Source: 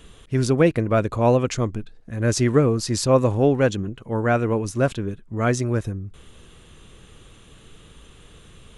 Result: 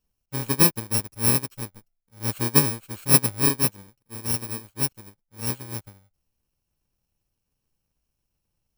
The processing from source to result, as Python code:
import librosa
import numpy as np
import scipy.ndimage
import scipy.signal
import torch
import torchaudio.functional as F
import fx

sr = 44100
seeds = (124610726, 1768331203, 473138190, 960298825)

y = fx.bit_reversed(x, sr, seeds[0], block=64)
y = fx.upward_expand(y, sr, threshold_db=-34.0, expansion=2.5)
y = y * librosa.db_to_amplitude(1.5)